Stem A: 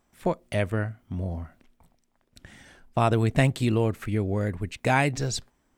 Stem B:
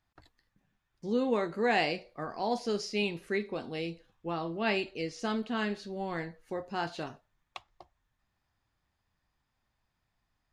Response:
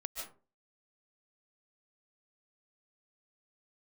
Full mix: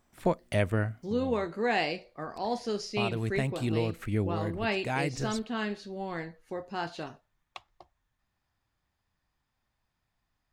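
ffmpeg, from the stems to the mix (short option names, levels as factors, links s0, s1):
-filter_complex "[0:a]volume=0.891[s0];[1:a]volume=0.944,asplit=2[s1][s2];[s2]apad=whole_len=254475[s3];[s0][s3]sidechaincompress=threshold=0.02:ratio=10:attack=7:release=898[s4];[s4][s1]amix=inputs=2:normalize=0"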